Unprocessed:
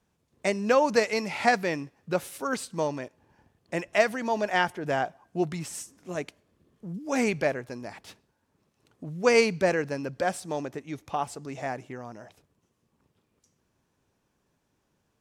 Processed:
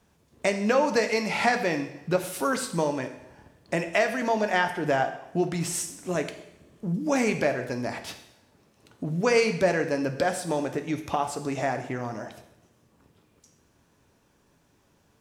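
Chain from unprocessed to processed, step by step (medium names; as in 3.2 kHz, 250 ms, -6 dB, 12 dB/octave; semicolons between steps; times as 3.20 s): compression 2:1, threshold -36 dBFS, peak gain reduction 11.5 dB; two-slope reverb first 0.78 s, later 2.5 s, from -25 dB, DRR 6 dB; trim +8.5 dB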